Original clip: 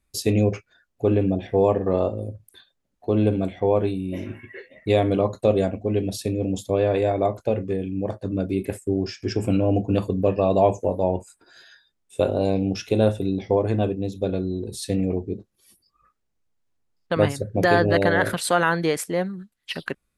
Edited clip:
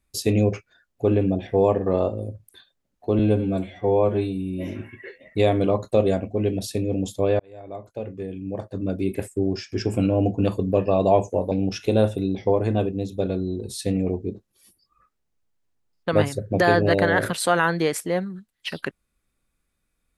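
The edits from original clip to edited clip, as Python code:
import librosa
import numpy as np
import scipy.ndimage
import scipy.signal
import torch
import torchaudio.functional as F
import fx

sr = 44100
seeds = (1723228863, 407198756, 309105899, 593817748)

y = fx.edit(x, sr, fx.stretch_span(start_s=3.19, length_s=0.99, factor=1.5),
    fx.fade_in_span(start_s=6.9, length_s=1.72),
    fx.cut(start_s=11.02, length_s=1.53), tone=tone)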